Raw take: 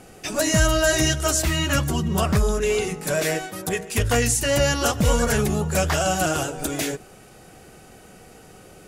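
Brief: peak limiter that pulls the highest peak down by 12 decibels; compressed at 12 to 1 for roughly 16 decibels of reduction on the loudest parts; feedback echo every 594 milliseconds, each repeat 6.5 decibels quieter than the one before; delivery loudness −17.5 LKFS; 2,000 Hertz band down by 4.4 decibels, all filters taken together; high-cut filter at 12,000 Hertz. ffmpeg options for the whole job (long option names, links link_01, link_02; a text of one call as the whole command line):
ffmpeg -i in.wav -af "lowpass=12000,equalizer=frequency=2000:width_type=o:gain=-6,acompressor=threshold=-31dB:ratio=12,alimiter=level_in=8.5dB:limit=-24dB:level=0:latency=1,volume=-8.5dB,aecho=1:1:594|1188|1782|2376|2970|3564:0.473|0.222|0.105|0.0491|0.0231|0.0109,volume=23dB" out.wav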